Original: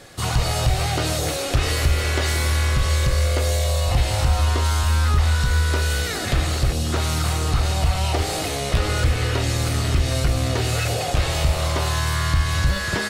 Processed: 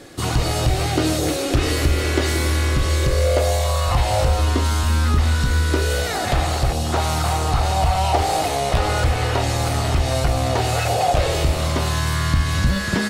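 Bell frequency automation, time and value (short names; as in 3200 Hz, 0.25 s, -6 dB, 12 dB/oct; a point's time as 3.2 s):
bell +11 dB 0.82 oct
2.96 s 310 Hz
3.86 s 1300 Hz
4.57 s 260 Hz
5.68 s 260 Hz
6.12 s 790 Hz
11.08 s 790 Hz
11.66 s 220 Hz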